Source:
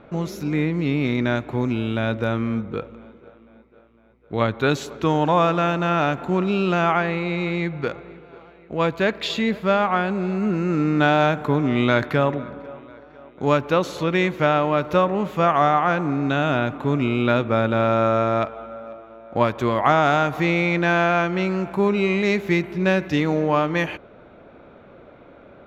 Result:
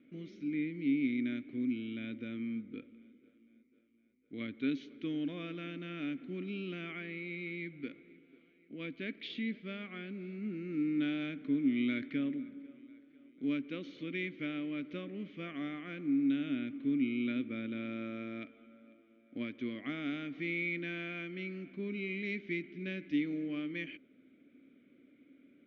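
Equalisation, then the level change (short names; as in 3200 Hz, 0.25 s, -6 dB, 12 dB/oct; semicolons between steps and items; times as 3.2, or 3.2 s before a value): vowel filter i; steep low-pass 6500 Hz 96 dB/oct; -4.0 dB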